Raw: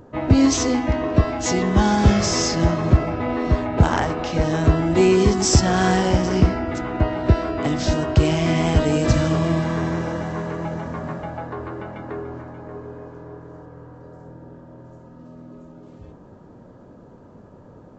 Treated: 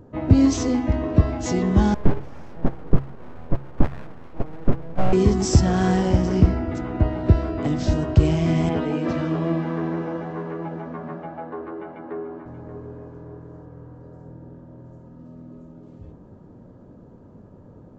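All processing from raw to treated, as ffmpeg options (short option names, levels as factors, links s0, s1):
-filter_complex "[0:a]asettb=1/sr,asplit=3[s0][s1][s2];[s0]atrim=end=1.944[s3];[s1]atrim=start=1.94:end=5.13,asetpts=PTS-STARTPTS,afade=t=in:d=0.004:c=qsin,afade=t=out:st=3.186:d=0.004:c=qsin,agate=range=0.251:threshold=0.141:ratio=16:release=100:detection=peak,lowpass=1500,aeval=exprs='abs(val(0))':c=same[s4];[s2]atrim=start=5.126[s5];[s3][s4]acrossfade=d=0.004:c1=hsin:c2=qsin[s6];[s6][s5]acrossfade=d=0.004:c1=qsin:c2=hsin,asettb=1/sr,asplit=3[s7][s8][s9];[s7]atrim=end=8.694[s10];[s8]atrim=start=8.69:end=12.46,asetpts=PTS-STARTPTS,afade=t=in:d=0.004:c=qsin,afade=t=out:st=3.766:d=0.004:c=qsin,highpass=270,lowpass=3000,asplit=2[s11][s12];[s12]adelay=12,volume=0.596[s13];[s11][s13]amix=inputs=2:normalize=0,atrim=end_sample=166257[s14];[s9]atrim=start=12.456[s15];[s10][s14]acrossfade=d=0.004:c1=hsin:c2=qsin[s16];[s16][s15]acrossfade=d=0.004:c1=qsin:c2=hsin,lowshelf=f=460:g=10,bandreject=f=67.78:t=h:w=4,bandreject=f=135.56:t=h:w=4,volume=0.398"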